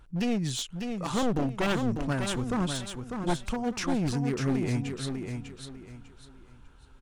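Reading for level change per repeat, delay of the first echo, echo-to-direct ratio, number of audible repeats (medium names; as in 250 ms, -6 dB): -11.0 dB, 598 ms, -5.5 dB, 3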